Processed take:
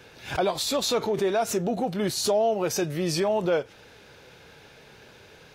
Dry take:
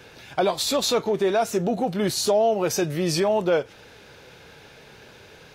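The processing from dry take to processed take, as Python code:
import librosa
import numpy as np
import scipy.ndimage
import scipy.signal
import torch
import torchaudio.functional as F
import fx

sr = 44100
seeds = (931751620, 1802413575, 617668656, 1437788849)

y = fx.pre_swell(x, sr, db_per_s=140.0)
y = y * 10.0 ** (-3.0 / 20.0)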